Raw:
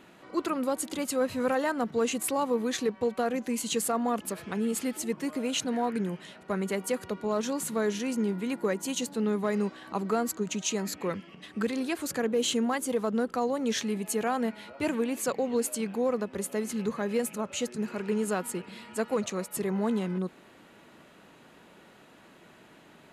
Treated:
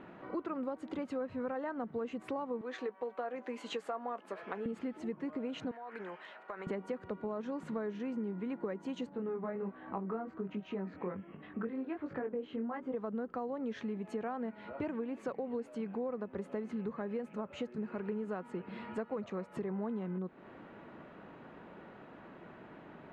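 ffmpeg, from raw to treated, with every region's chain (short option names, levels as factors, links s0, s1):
-filter_complex "[0:a]asettb=1/sr,asplit=3[s0][s1][s2];[s0]atrim=end=2.614[s3];[s1]atrim=start=2.61:end=4.66,asetpts=PTS-STARTPTS,afade=t=in:d=0.004:c=qsin,afade=t=out:st=2.046:d=0.004:c=qsin,highpass=490,asplit=2[s4][s5];[s5]adelay=16,volume=0.211[s6];[s4][s6]amix=inputs=2:normalize=0,atrim=end_sample=90405[s7];[s2]atrim=start=4.656[s8];[s3][s7]acrossfade=d=0.004:c1=hsin:c2=qsin[s9];[s9][s8]acrossfade=d=0.004:c1=qsin:c2=hsin,asettb=1/sr,asplit=3[s10][s11][s12];[s10]atrim=end=5.714[s13];[s11]atrim=start=5.71:end=6.67,asetpts=PTS-STARTPTS,afade=t=in:d=0.004:c=qsin,afade=t=out:st=0.956:d=0.004:c=qsin,highpass=800,acompressor=threshold=0.0112:ratio=10:attack=3.2:release=140:knee=1:detection=peak[s14];[s12]atrim=start=6.666[s15];[s13][s14]acrossfade=d=0.004:c1=hsin:c2=qsin[s16];[s16][s15]acrossfade=d=0.004:c1=qsin:c2=hsin,asettb=1/sr,asplit=3[s17][s18][s19];[s17]atrim=end=9.094[s20];[s18]atrim=start=9.09:end=12.94,asetpts=PTS-STARTPTS,afade=t=in:d=0.004:c=qsin,afade=t=out:st=3.846:d=0.004:c=qsin,lowpass=2500,flanger=delay=19.5:depth=3.1:speed=1.3[s21];[s19]atrim=start=12.936[s22];[s20][s21]acrossfade=d=0.004:c1=hsin:c2=qsin[s23];[s23][s22]acrossfade=d=0.004:c1=qsin:c2=hsin,lowpass=1600,acompressor=threshold=0.01:ratio=5,volume=1.5"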